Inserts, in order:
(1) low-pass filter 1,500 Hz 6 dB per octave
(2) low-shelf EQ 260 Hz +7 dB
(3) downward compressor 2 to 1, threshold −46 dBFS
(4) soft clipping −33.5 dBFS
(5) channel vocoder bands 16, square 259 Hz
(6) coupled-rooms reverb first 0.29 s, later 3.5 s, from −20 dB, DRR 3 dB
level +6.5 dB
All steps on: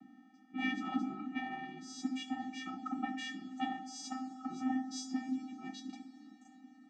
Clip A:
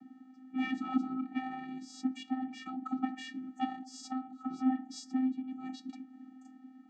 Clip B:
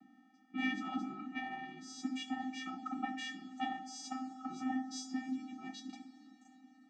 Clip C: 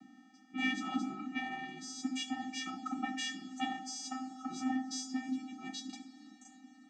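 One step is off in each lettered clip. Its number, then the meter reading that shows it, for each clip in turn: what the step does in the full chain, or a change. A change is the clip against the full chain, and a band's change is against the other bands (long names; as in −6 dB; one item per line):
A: 6, 250 Hz band +7.0 dB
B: 2, 125 Hz band −2.0 dB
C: 1, change in momentary loudness spread −3 LU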